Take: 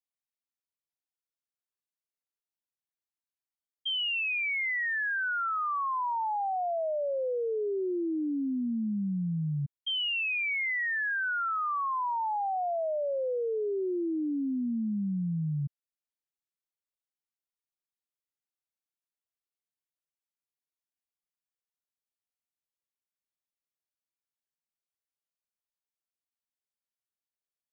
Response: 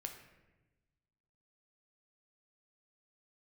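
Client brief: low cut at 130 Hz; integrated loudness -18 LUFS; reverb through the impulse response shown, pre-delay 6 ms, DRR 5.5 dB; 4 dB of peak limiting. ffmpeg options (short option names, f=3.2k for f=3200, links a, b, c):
-filter_complex "[0:a]highpass=130,alimiter=level_in=7.5dB:limit=-24dB:level=0:latency=1,volume=-7.5dB,asplit=2[a][b];[1:a]atrim=start_sample=2205,adelay=6[c];[b][c]afir=irnorm=-1:irlink=0,volume=-3dB[d];[a][d]amix=inputs=2:normalize=0,volume=15dB"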